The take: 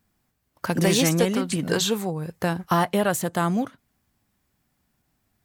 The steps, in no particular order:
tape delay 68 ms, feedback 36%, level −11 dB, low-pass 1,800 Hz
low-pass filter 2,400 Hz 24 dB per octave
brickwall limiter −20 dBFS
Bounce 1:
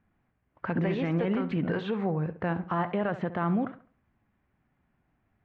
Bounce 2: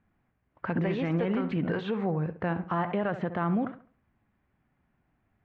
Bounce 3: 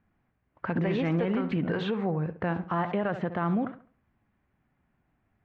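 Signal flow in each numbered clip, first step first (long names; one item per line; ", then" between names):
brickwall limiter, then low-pass filter, then tape delay
tape delay, then brickwall limiter, then low-pass filter
low-pass filter, then tape delay, then brickwall limiter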